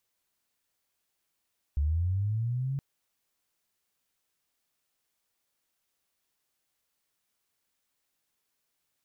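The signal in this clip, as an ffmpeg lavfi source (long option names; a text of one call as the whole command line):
ffmpeg -f lavfi -i "aevalsrc='pow(10,(-23.5-5*t/1.02)/20)*sin(2*PI*(69*t+71*t*t/(2*1.02)))':duration=1.02:sample_rate=44100" out.wav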